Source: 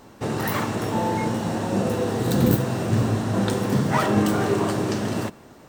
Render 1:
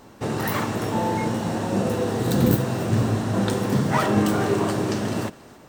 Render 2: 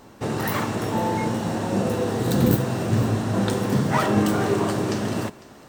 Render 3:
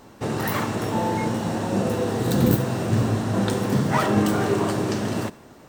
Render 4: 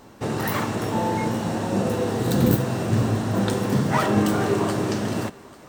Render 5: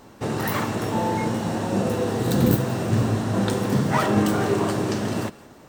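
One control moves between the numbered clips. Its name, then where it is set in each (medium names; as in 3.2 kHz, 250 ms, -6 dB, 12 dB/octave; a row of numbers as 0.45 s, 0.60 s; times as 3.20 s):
thinning echo, time: 279 ms, 501 ms, 70 ms, 842 ms, 172 ms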